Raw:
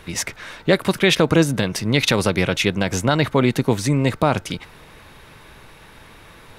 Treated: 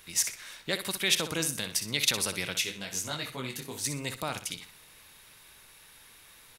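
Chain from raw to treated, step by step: pre-emphasis filter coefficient 0.9; feedback delay 62 ms, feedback 30%, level -10 dB; 2.60–3.83 s: detune thickener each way 34 cents -> 15 cents

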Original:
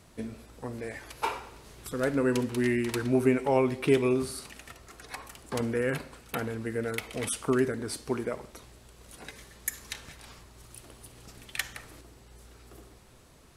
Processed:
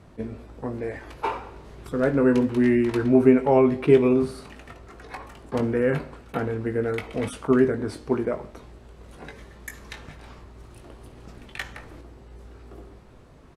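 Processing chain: low-pass 1.1 kHz 6 dB/octave; doubling 20 ms -8 dB; attacks held to a fixed rise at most 510 dB/s; trim +7 dB

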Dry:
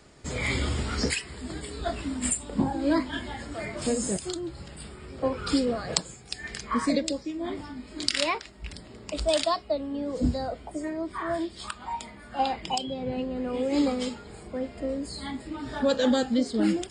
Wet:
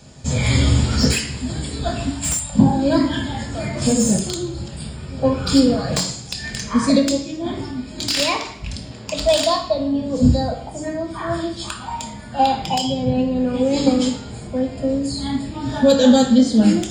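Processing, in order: 2.09–2.55 s: elliptic band-stop 180–630 Hz; reverberation RT60 0.70 s, pre-delay 3 ms, DRR 1.5 dB; 8.91–9.32 s: overdrive pedal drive 8 dB, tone 4.9 kHz, clips at -12 dBFS; slew-rate limiter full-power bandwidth 370 Hz; trim +6 dB

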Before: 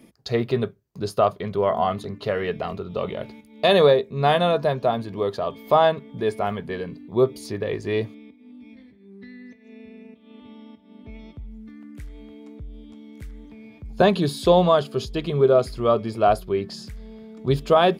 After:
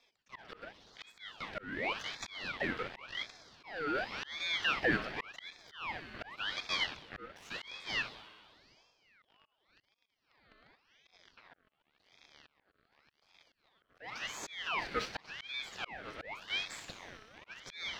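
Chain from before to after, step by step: hum notches 60/120/180/240/300/360/420 Hz; in parallel at -7.5 dB: fuzz box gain 38 dB, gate -37 dBFS; on the sum: three-band isolator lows -19 dB, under 510 Hz, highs -22 dB, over 3.4 kHz; on a send: feedback echo behind a high-pass 62 ms, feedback 80%, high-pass 1.8 kHz, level -11 dB; on the sum: dynamic bell 440 Hz, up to +4 dB, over -29 dBFS, Q 0.9; high-pass 210 Hz 12 dB/octave; peak limiter -13.5 dBFS, peak gain reduction 10 dB; slow attack 556 ms; ring modulator with a swept carrier 1.9 kHz, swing 55%, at 0.9 Hz; trim -5.5 dB

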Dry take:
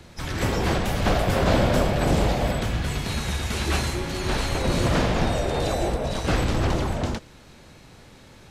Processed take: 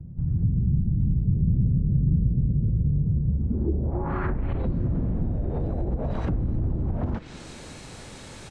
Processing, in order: low-pass that closes with the level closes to 320 Hz, closed at -19.5 dBFS; dynamic bell 530 Hz, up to -7 dB, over -42 dBFS, Q 0.78; in parallel at +2.5 dB: peak limiter -23 dBFS, peak gain reduction 9.5 dB; on the sum: compression 2:1, threshold -23 dBFS, peak gain reduction 5 dB; low-pass sweep 150 Hz -> 8.8 kHz, 3.29–4.98 s; on a send: frequency-shifting echo 303 ms, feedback 53%, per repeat +100 Hz, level -23 dB; on the sum: trim -1.5 dB

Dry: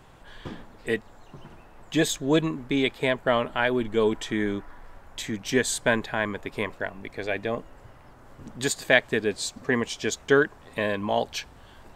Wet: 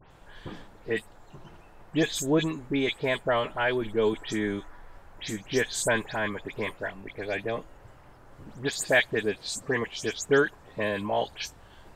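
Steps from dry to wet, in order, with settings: delay that grows with frequency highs late, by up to 106 ms; trim -2 dB

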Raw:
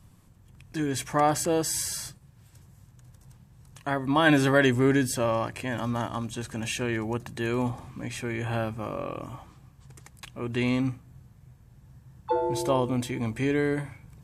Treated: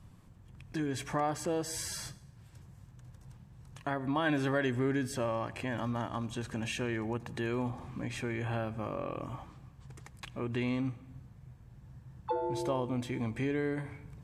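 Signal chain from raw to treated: low-pass 3.8 kHz 6 dB/octave; on a send at -21 dB: reverberation RT60 0.80 s, pre-delay 76 ms; on the sum: compression 2:1, threshold -35 dBFS, peak gain reduction 10.5 dB

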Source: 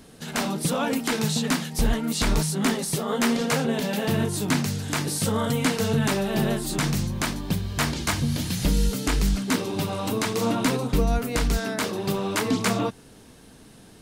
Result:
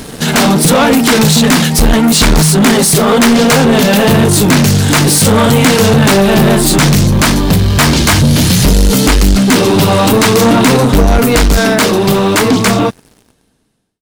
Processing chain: fade out at the end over 2.77 s; in parallel at +0.5 dB: peak limiter -20 dBFS, peak gain reduction 8 dB; on the sum: waveshaping leveller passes 3; trim +6 dB

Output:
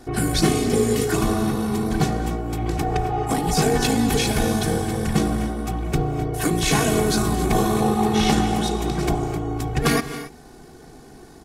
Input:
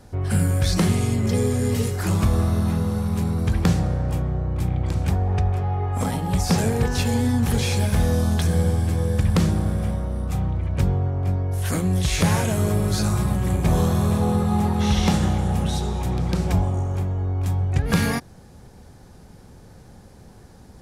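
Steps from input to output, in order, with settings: granular stretch 0.55×, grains 37 ms; resonant low shelf 130 Hz -8 dB, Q 3; comb 2.7 ms, depth 78%; gated-style reverb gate 300 ms rising, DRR 11 dB; trim +4 dB

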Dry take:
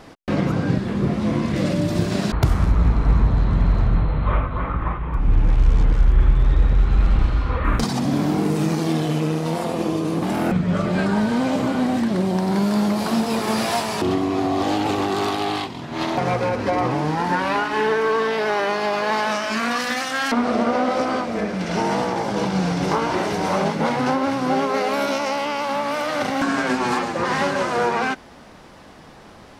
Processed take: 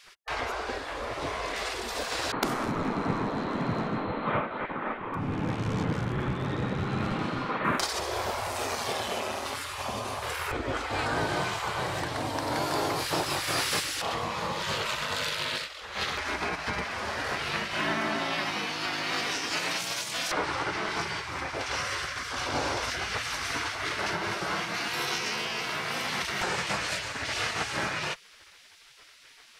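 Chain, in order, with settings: spectral gate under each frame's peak -15 dB weak; 11.42–12.15 s: peaking EQ 340 Hz -6 dB 0.97 oct

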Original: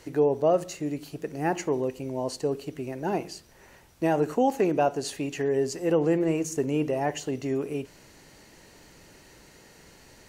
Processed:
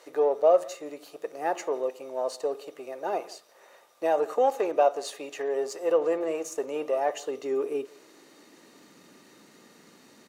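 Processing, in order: partial rectifier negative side -3 dB; small resonant body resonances 1.2/3.7 kHz, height 15 dB, ringing for 65 ms; speakerphone echo 170 ms, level -22 dB; high-pass sweep 550 Hz -> 230 Hz, 7.03–8.92 s; trim -2.5 dB

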